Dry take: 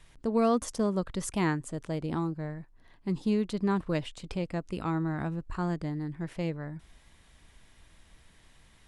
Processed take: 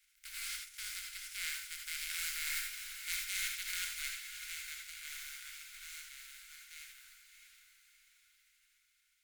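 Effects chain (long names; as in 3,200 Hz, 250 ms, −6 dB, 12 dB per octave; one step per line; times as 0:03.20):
compressing power law on the bin magnitudes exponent 0.16
source passing by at 0:02.56, 18 m/s, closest 2.2 metres
inverse Chebyshev band-stop filter 190–500 Hz, stop band 80 dB
reversed playback
downward compressor, threshold −44 dBFS, peak gain reduction 8 dB
reversed playback
hollow resonant body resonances 250/390/1,500/2,200 Hz, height 13 dB, ringing for 20 ms
on a send: feedback delay with all-pass diffusion 621 ms, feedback 46%, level −8.5 dB
on the sum: reverb whose tail is shaped and stops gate 100 ms rising, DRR 1.5 dB
wrong playback speed 25 fps video run at 24 fps
level +6.5 dB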